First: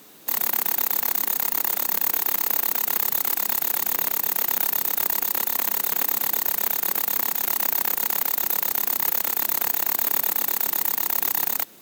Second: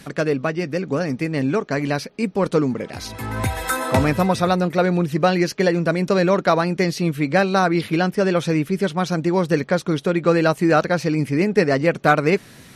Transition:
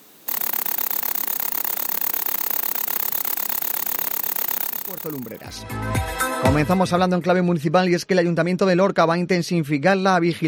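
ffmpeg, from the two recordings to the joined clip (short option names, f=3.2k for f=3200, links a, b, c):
-filter_complex "[0:a]apad=whole_dur=10.47,atrim=end=10.47,atrim=end=5.69,asetpts=PTS-STARTPTS[a];[1:a]atrim=start=2.02:end=7.96,asetpts=PTS-STARTPTS[b];[a][b]acrossfade=d=1.16:c1=qua:c2=qua"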